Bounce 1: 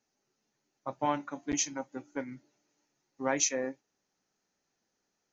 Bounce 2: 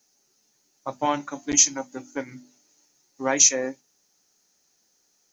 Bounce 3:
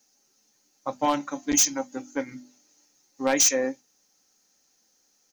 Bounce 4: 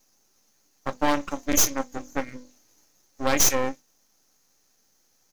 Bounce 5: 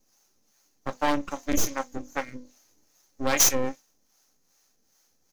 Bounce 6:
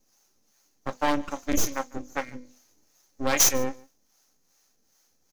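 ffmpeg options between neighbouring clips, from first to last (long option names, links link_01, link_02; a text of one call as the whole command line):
ffmpeg -i in.wav -filter_complex "[0:a]bass=frequency=250:gain=-1,treble=frequency=4000:gain=14,bandreject=frequency=50:width_type=h:width=6,bandreject=frequency=100:width_type=h:width=6,bandreject=frequency=150:width_type=h:width=6,bandreject=frequency=200:width_type=h:width=6,bandreject=frequency=250:width_type=h:width=6,acrossover=split=3400[link_01][link_02];[link_02]alimiter=limit=-12.5dB:level=0:latency=1:release=27[link_03];[link_01][link_03]amix=inputs=2:normalize=0,volume=6dB" out.wav
ffmpeg -i in.wav -af "aeval=exprs='0.224*(abs(mod(val(0)/0.224+3,4)-2)-1)':channel_layout=same,aecho=1:1:3.8:0.33" out.wav
ffmpeg -i in.wav -af "aeval=exprs='max(val(0),0)':channel_layout=same,volume=4.5dB" out.wav
ffmpeg -i in.wav -filter_complex "[0:a]acrossover=split=530[link_01][link_02];[link_01]aeval=exprs='val(0)*(1-0.7/2+0.7/2*cos(2*PI*2.5*n/s))':channel_layout=same[link_03];[link_02]aeval=exprs='val(0)*(1-0.7/2-0.7/2*cos(2*PI*2.5*n/s))':channel_layout=same[link_04];[link_03][link_04]amix=inputs=2:normalize=0,volume=1.5dB" out.wav
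ffmpeg -i in.wav -af "aecho=1:1:148:0.0668" out.wav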